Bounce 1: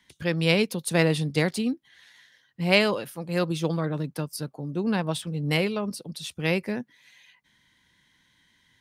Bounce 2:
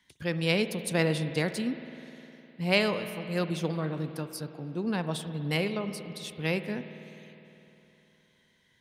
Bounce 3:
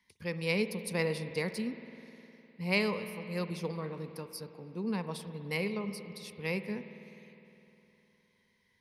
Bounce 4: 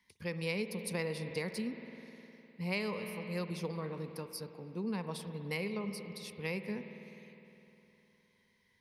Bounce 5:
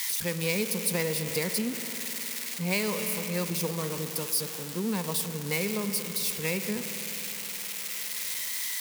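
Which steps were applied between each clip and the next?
spring tank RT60 3.3 s, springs 51 ms, chirp 50 ms, DRR 9.5 dB; trim -4.5 dB
rippled EQ curve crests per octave 0.87, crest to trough 9 dB; trim -6.5 dB
compression 2.5:1, threshold -34 dBFS, peak gain reduction 8 dB
zero-crossing glitches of -28.5 dBFS; trim +6.5 dB

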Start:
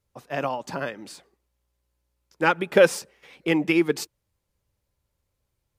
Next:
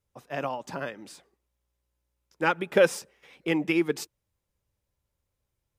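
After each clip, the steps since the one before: band-stop 4.4 kHz, Q 17; trim -4 dB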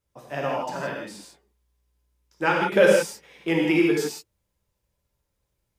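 gated-style reverb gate 190 ms flat, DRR -2.5 dB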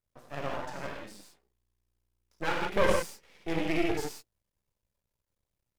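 half-wave rectifier; trim -4.5 dB

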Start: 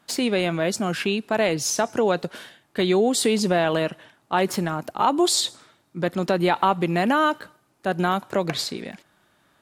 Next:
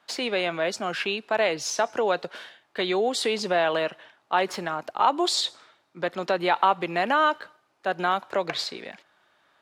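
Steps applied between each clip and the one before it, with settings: three-band isolator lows -14 dB, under 420 Hz, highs -14 dB, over 5.7 kHz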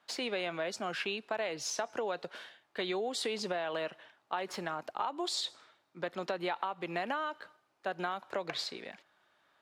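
compression 12:1, threshold -24 dBFS, peak gain reduction 10.5 dB; trim -6.5 dB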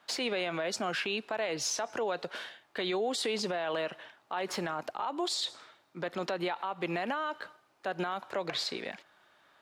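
peak limiter -30.5 dBFS, peak gain reduction 11 dB; trim +6.5 dB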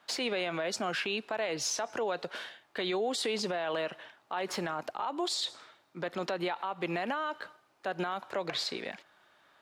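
no audible change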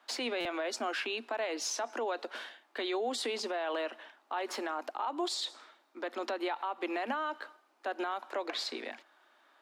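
rippled Chebyshev high-pass 230 Hz, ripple 3 dB; buffer glitch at 0.40 s, samples 256, times 8

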